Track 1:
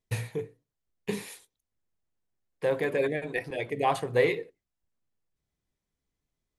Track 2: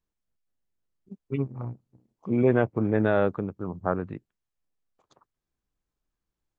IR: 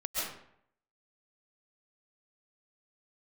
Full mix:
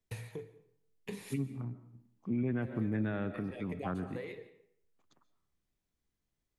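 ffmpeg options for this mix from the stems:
-filter_complex "[0:a]acompressor=threshold=-39dB:ratio=3,volume=-3.5dB,asplit=2[a][b];[b]volume=-20dB[c];[1:a]equalizer=f=250:t=o:w=1:g=6,equalizer=f=500:t=o:w=1:g=-8,equalizer=f=1k:t=o:w=1:g=-5,equalizer=f=2k:t=o:w=1:g=4,volume=-7.5dB,asplit=3[d][e][f];[e]volume=-17.5dB[g];[f]apad=whole_len=290596[h];[a][h]sidechaincompress=threshold=-34dB:ratio=8:attack=9.3:release=863[i];[2:a]atrim=start_sample=2205[j];[c][g]amix=inputs=2:normalize=0[k];[k][j]afir=irnorm=-1:irlink=0[l];[i][d][l]amix=inputs=3:normalize=0,acrossover=split=130[m][n];[n]acompressor=threshold=-32dB:ratio=5[o];[m][o]amix=inputs=2:normalize=0"

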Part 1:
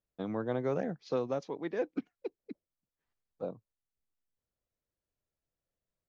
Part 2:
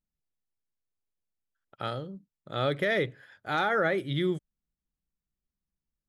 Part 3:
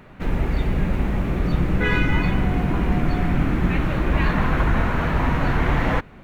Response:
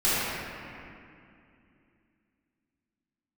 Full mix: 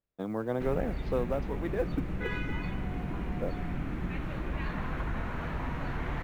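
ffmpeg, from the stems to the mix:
-filter_complex "[0:a]lowpass=3k,acrusher=bits=9:mode=log:mix=0:aa=0.000001,volume=1.5dB[a];[2:a]acompressor=threshold=-27dB:ratio=1.5,adelay=400,volume=-10dB[b];[a][b]amix=inputs=2:normalize=0"

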